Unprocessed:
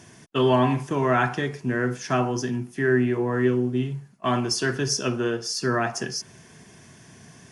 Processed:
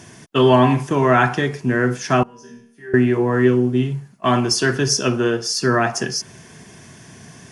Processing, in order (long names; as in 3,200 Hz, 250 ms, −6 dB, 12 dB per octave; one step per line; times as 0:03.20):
0:02.23–0:02.94: resonators tuned to a chord D#3 major, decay 0.63 s
level +6.5 dB